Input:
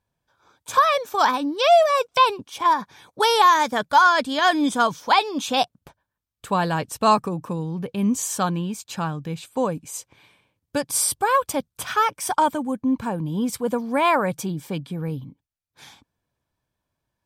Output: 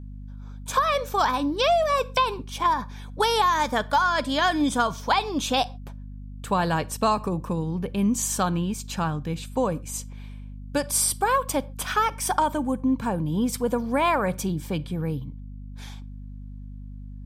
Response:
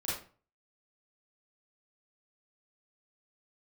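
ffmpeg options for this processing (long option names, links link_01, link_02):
-filter_complex "[0:a]asplit=2[link_01][link_02];[1:a]atrim=start_sample=2205,atrim=end_sample=6615[link_03];[link_02][link_03]afir=irnorm=-1:irlink=0,volume=-24dB[link_04];[link_01][link_04]amix=inputs=2:normalize=0,acompressor=threshold=-18dB:ratio=6,aeval=exprs='val(0)+0.0141*(sin(2*PI*50*n/s)+sin(2*PI*2*50*n/s)/2+sin(2*PI*3*50*n/s)/3+sin(2*PI*4*50*n/s)/4+sin(2*PI*5*50*n/s)/5)':channel_layout=same"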